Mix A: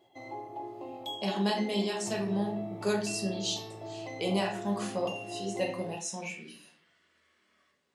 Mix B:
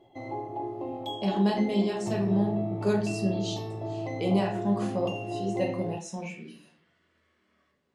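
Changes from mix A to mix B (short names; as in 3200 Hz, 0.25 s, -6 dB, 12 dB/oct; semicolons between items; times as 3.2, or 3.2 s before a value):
background +4.0 dB; master: add tilt -2.5 dB/oct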